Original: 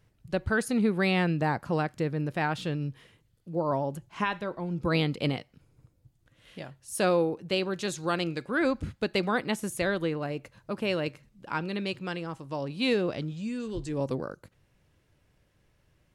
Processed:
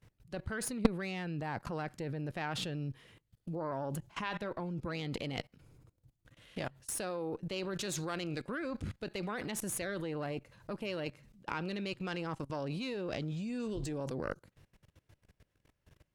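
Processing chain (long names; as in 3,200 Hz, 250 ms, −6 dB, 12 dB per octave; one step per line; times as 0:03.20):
output level in coarse steps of 22 dB
harmonic generator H 6 −16 dB, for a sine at −18 dBFS
level +6.5 dB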